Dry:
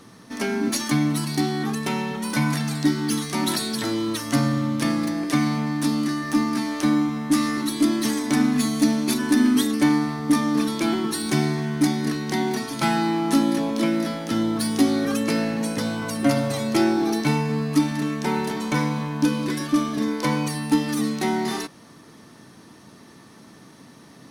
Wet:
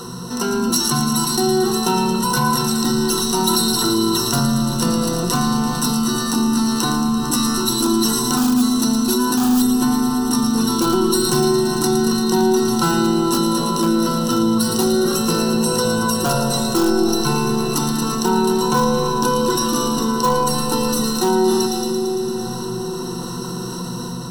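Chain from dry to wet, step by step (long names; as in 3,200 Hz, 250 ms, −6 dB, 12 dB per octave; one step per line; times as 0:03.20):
EQ curve with evenly spaced ripples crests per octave 2, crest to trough 16 dB
delay with a high-pass on its return 113 ms, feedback 75%, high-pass 2,400 Hz, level −7.5 dB
automatic gain control gain up to 7 dB
in parallel at −9.5 dB: wrap-around overflow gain 6.5 dB
on the sum: phaser with its sweep stopped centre 420 Hz, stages 8
on a send at −9.5 dB: spectral tilt −4 dB per octave + convolution reverb RT60 4.3 s, pre-delay 40 ms
on the sum: envelope flattener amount 50%
level −4.5 dB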